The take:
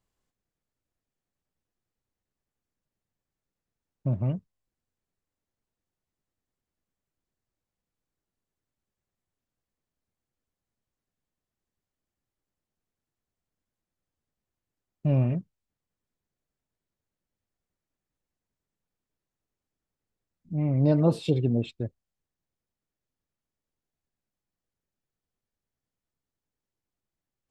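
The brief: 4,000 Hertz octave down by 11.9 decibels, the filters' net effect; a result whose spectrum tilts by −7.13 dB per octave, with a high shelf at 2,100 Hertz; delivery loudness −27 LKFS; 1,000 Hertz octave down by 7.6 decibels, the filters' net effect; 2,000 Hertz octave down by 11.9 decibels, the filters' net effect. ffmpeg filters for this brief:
ffmpeg -i in.wav -af "equalizer=frequency=1000:width_type=o:gain=-8.5,equalizer=frequency=2000:width_type=o:gain=-8.5,highshelf=frequency=2100:gain=-4.5,equalizer=frequency=4000:width_type=o:gain=-7,volume=0.5dB" out.wav

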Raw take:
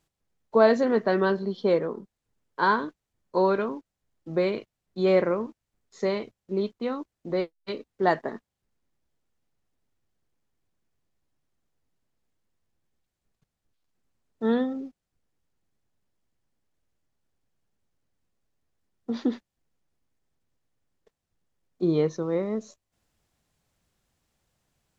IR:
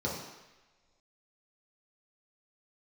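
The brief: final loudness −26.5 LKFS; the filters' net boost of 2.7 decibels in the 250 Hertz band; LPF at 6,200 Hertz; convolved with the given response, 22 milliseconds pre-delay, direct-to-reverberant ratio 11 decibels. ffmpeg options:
-filter_complex "[0:a]lowpass=6200,equalizer=frequency=250:width_type=o:gain=3.5,asplit=2[link_01][link_02];[1:a]atrim=start_sample=2205,adelay=22[link_03];[link_02][link_03]afir=irnorm=-1:irlink=0,volume=-17.5dB[link_04];[link_01][link_04]amix=inputs=2:normalize=0,volume=-2dB"

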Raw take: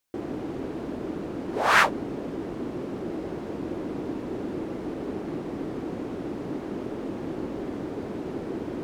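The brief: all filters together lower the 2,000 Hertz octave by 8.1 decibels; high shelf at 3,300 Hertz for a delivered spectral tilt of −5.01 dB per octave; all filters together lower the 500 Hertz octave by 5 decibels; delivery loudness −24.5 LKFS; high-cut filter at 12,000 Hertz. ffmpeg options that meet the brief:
ffmpeg -i in.wav -af "lowpass=12000,equalizer=frequency=500:width_type=o:gain=-6.5,equalizer=frequency=2000:width_type=o:gain=-8,highshelf=frequency=3300:gain=-8,volume=10dB" out.wav

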